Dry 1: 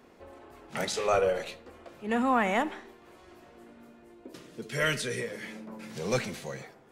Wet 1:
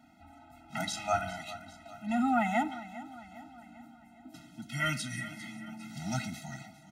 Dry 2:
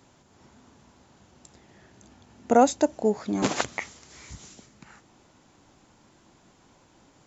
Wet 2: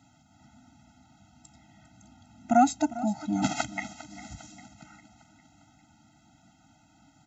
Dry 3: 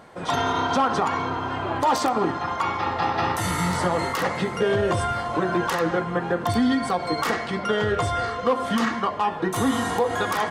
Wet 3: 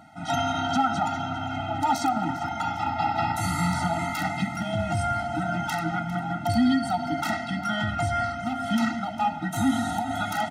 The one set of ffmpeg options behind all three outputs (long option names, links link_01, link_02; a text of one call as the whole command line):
ffmpeg -i in.wav -af "highpass=56,aecho=1:1:402|804|1206|1608|2010:0.158|0.0856|0.0462|0.025|0.0135,afftfilt=real='re*eq(mod(floor(b*sr/1024/310),2),0)':imag='im*eq(mod(floor(b*sr/1024/310),2),0)':win_size=1024:overlap=0.75" out.wav